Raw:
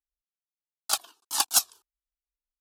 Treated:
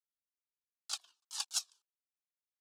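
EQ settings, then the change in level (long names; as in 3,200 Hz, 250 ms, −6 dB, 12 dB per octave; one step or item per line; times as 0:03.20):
high-frequency loss of the air 120 metres
first difference
−2.0 dB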